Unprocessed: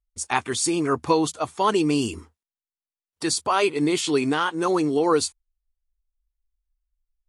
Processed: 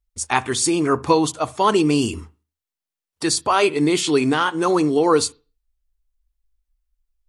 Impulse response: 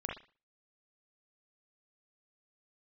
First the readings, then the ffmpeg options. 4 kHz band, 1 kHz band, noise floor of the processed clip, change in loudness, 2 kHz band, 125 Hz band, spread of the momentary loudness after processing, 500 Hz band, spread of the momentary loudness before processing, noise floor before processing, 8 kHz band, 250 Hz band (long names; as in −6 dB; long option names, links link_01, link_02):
+3.5 dB, +4.0 dB, below −85 dBFS, +4.0 dB, +4.0 dB, +5.0 dB, 6 LU, +4.0 dB, 6 LU, below −85 dBFS, +3.5 dB, +4.0 dB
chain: -filter_complex "[0:a]asplit=2[link_01][link_02];[link_02]lowshelf=frequency=220:gain=12[link_03];[1:a]atrim=start_sample=2205[link_04];[link_03][link_04]afir=irnorm=-1:irlink=0,volume=-19dB[link_05];[link_01][link_05]amix=inputs=2:normalize=0,volume=3dB"